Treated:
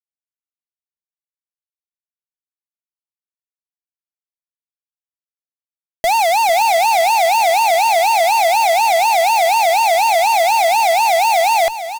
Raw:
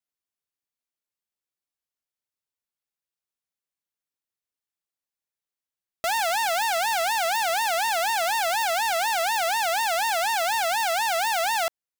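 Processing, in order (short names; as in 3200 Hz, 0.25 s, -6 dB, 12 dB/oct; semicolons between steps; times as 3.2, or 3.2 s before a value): fuzz box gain 45 dB, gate -50 dBFS; feedback echo 0.451 s, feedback 26%, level -11.5 dB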